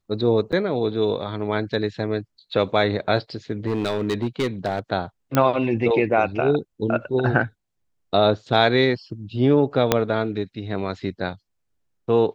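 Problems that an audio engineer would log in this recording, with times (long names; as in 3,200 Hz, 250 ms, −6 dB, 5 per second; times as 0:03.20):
0:00.52–0:00.53: drop-out 7.7 ms
0:03.66–0:04.79: clipping −18 dBFS
0:05.35: click −6 dBFS
0:09.92: click −1 dBFS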